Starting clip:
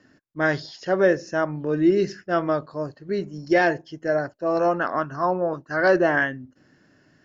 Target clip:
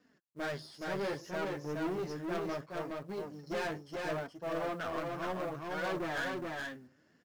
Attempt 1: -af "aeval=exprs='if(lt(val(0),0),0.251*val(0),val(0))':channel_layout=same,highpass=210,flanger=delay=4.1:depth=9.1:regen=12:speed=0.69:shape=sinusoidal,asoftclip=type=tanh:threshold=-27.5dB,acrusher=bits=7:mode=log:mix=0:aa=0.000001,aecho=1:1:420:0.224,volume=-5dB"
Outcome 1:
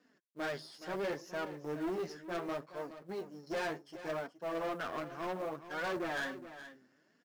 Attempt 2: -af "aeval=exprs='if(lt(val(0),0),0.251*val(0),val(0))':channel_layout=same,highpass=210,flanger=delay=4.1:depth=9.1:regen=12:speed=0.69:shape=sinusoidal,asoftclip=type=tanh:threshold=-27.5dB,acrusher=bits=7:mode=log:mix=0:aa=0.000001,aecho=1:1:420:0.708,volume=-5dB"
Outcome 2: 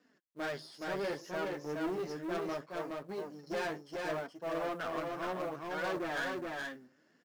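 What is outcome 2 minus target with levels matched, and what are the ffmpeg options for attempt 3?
125 Hz band −4.5 dB
-af "aeval=exprs='if(lt(val(0),0),0.251*val(0),val(0))':channel_layout=same,highpass=82,flanger=delay=4.1:depth=9.1:regen=12:speed=0.69:shape=sinusoidal,asoftclip=type=tanh:threshold=-27.5dB,acrusher=bits=7:mode=log:mix=0:aa=0.000001,aecho=1:1:420:0.708,volume=-5dB"

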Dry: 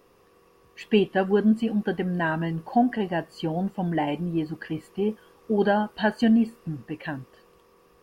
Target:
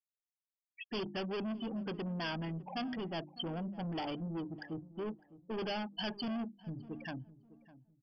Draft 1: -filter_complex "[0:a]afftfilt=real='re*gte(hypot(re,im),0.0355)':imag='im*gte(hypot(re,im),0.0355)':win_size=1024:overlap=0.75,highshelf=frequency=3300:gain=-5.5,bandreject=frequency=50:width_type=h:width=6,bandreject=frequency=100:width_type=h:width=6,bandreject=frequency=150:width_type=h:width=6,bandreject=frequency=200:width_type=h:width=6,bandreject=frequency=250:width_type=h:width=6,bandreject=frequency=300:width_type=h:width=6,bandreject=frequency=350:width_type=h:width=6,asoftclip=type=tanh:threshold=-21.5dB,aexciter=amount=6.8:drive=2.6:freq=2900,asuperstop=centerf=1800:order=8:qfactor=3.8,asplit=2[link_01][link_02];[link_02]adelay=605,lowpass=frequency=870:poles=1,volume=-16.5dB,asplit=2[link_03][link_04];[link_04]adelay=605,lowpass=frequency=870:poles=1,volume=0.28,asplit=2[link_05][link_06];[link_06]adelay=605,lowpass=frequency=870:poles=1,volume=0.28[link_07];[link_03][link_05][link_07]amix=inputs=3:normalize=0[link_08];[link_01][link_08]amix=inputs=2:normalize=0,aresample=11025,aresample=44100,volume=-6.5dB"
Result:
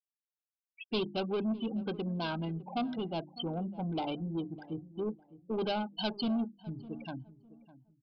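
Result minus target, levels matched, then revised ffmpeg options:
2,000 Hz band −5.0 dB; soft clipping: distortion −5 dB
-filter_complex "[0:a]afftfilt=real='re*gte(hypot(re,im),0.0355)':imag='im*gte(hypot(re,im),0.0355)':win_size=1024:overlap=0.75,highshelf=frequency=3300:gain=-5.5,bandreject=frequency=50:width_type=h:width=6,bandreject=frequency=100:width_type=h:width=6,bandreject=frequency=150:width_type=h:width=6,bandreject=frequency=200:width_type=h:width=6,bandreject=frequency=250:width_type=h:width=6,bandreject=frequency=300:width_type=h:width=6,bandreject=frequency=350:width_type=h:width=6,asoftclip=type=tanh:threshold=-29dB,aexciter=amount=6.8:drive=2.6:freq=2900,asuperstop=centerf=3900:order=8:qfactor=3.8,asplit=2[link_01][link_02];[link_02]adelay=605,lowpass=frequency=870:poles=1,volume=-16.5dB,asplit=2[link_03][link_04];[link_04]adelay=605,lowpass=frequency=870:poles=1,volume=0.28,asplit=2[link_05][link_06];[link_06]adelay=605,lowpass=frequency=870:poles=1,volume=0.28[link_07];[link_03][link_05][link_07]amix=inputs=3:normalize=0[link_08];[link_01][link_08]amix=inputs=2:normalize=0,aresample=11025,aresample=44100,volume=-6.5dB"

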